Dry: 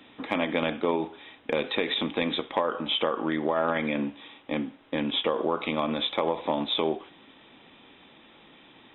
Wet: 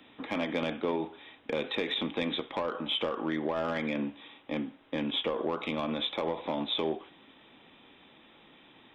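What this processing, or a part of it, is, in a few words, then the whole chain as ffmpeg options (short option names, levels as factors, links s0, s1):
one-band saturation: -filter_complex "[0:a]acrossover=split=430|2800[s0][s1][s2];[s1]asoftclip=type=tanh:threshold=0.0596[s3];[s0][s3][s2]amix=inputs=3:normalize=0,volume=0.668"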